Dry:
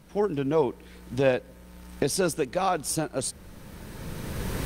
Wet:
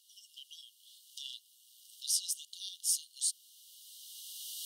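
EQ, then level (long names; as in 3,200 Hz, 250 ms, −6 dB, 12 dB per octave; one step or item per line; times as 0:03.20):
linear-phase brick-wall high-pass 2,800 Hz
0.0 dB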